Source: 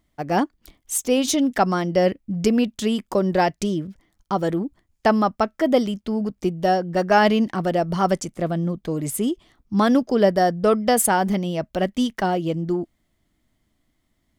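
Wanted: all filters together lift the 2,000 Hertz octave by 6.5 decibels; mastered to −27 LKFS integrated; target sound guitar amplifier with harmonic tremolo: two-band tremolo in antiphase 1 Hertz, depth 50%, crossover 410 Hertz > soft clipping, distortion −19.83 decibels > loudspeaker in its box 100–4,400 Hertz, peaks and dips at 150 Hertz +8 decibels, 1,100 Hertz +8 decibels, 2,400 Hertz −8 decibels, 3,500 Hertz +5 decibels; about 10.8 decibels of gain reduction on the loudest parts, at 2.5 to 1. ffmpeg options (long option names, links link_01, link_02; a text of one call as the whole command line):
ffmpeg -i in.wav -filter_complex "[0:a]equalizer=frequency=2000:width_type=o:gain=9,acompressor=threshold=-27dB:ratio=2.5,acrossover=split=410[link_01][link_02];[link_01]aeval=exprs='val(0)*(1-0.5/2+0.5/2*cos(2*PI*1*n/s))':channel_layout=same[link_03];[link_02]aeval=exprs='val(0)*(1-0.5/2-0.5/2*cos(2*PI*1*n/s))':channel_layout=same[link_04];[link_03][link_04]amix=inputs=2:normalize=0,asoftclip=threshold=-19.5dB,highpass=100,equalizer=frequency=150:width_type=q:width=4:gain=8,equalizer=frequency=1100:width_type=q:width=4:gain=8,equalizer=frequency=2400:width_type=q:width=4:gain=-8,equalizer=frequency=3500:width_type=q:width=4:gain=5,lowpass=frequency=4400:width=0.5412,lowpass=frequency=4400:width=1.3066,volume=4dB" out.wav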